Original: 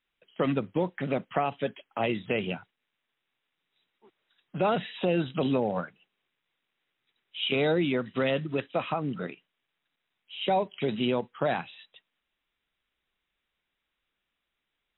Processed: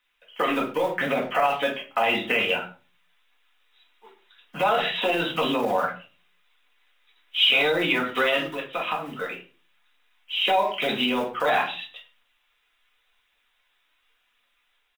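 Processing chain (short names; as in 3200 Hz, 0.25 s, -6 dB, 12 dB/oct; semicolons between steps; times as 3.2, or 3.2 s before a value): block floating point 7-bit; phaser 0.9 Hz, delay 3.3 ms, feedback 33%; 8.45–10.45 compressor 6:1, threshold -34 dBFS, peak gain reduction 10.5 dB; bell 84 Hz -10.5 dB 2.9 oct; AGC gain up to 3 dB; speakerphone echo 0.1 s, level -19 dB; shoebox room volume 170 m³, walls furnished, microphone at 1.9 m; limiter -16.5 dBFS, peak gain reduction 9.5 dB; EQ curve 200 Hz 0 dB, 690 Hz +7 dB, 1000 Hz +12 dB; gain -4.5 dB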